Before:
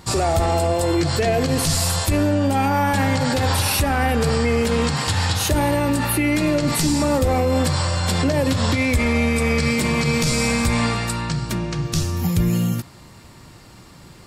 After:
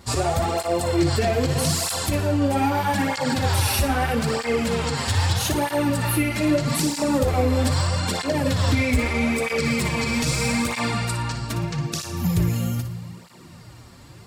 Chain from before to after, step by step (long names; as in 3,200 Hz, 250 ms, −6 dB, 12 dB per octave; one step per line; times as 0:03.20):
wavefolder on the positive side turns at −13.5 dBFS
flutter between parallel walls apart 10.1 metres, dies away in 0.37 s
on a send at −15 dB: convolution reverb RT60 4.9 s, pre-delay 54 ms
on the sum: through-zero flanger with one copy inverted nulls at 0.79 Hz, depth 6.8 ms